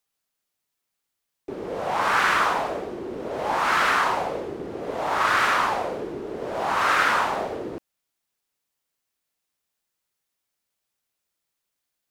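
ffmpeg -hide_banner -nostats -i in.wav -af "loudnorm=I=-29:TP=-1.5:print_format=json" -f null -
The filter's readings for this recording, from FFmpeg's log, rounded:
"input_i" : "-23.6",
"input_tp" : "-7.4",
"input_lra" : "2.9",
"input_thresh" : "-34.0",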